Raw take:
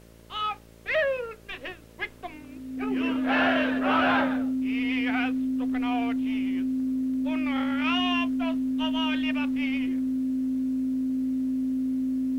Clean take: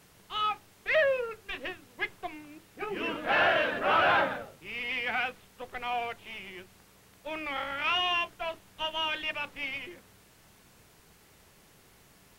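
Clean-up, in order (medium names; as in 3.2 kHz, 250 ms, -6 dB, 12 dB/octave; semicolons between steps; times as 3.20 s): de-hum 56.5 Hz, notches 11; band-stop 260 Hz, Q 30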